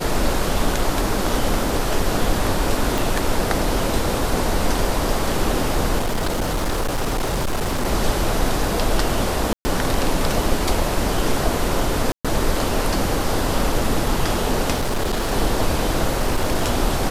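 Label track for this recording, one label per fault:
2.980000	2.980000	pop
5.980000	7.860000	clipped -18 dBFS
9.530000	9.650000	dropout 120 ms
12.120000	12.250000	dropout 126 ms
14.740000	15.320000	clipped -17.5 dBFS
16.200000	16.680000	clipped -13.5 dBFS

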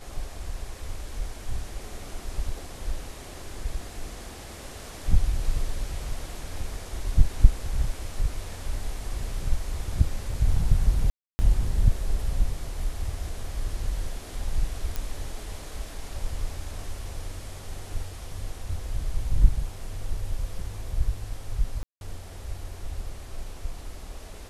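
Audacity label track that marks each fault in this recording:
11.100000	11.390000	dropout 290 ms
14.960000	14.960000	pop -15 dBFS
21.830000	22.010000	dropout 181 ms

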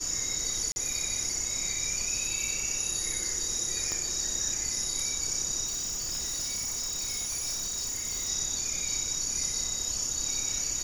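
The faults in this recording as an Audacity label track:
0.720000	0.760000	dropout 41 ms
3.920000	3.920000	pop -18 dBFS
5.650000	8.300000	clipped -29.5 dBFS

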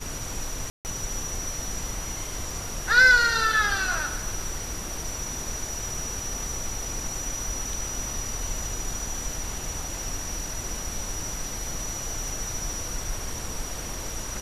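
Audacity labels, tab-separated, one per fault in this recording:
0.700000	0.850000	dropout 149 ms

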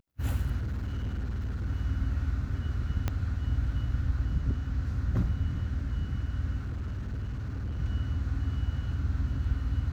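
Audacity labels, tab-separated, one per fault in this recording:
0.570000	1.670000	clipped -29 dBFS
3.080000	3.080000	pop -16 dBFS
6.600000	7.780000	clipped -30.5 dBFS

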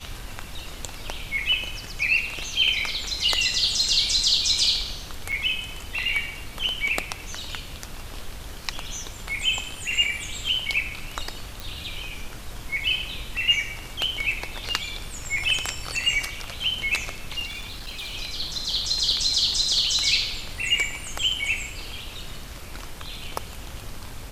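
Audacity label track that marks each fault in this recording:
5.320000	5.330000	dropout 6 ms
11.600000	11.600000	pop
17.460000	18.150000	clipped -30.5 dBFS

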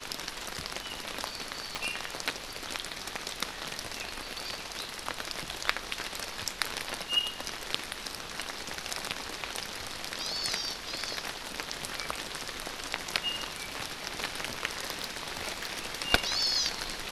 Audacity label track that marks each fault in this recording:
1.750000	1.750000	pop -18 dBFS
14.990000	15.950000	clipped -25 dBFS

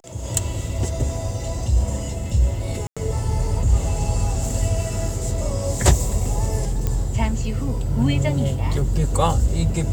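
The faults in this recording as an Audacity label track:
2.870000	2.970000	dropout 96 ms
6.870000	6.870000	pop -10 dBFS

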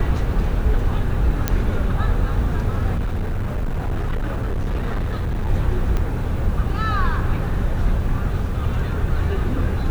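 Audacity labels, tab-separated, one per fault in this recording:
1.480000	1.480000	pop -4 dBFS
2.960000	5.480000	clipped -19 dBFS
5.970000	5.970000	pop -12 dBFS

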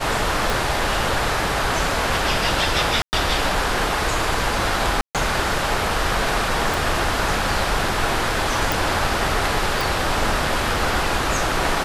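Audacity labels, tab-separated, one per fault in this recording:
0.500000	0.500000	pop
3.020000	3.130000	dropout 109 ms
5.010000	5.150000	dropout 137 ms
6.740000	6.740000	pop
8.720000	8.720000	pop
9.810000	9.810000	pop

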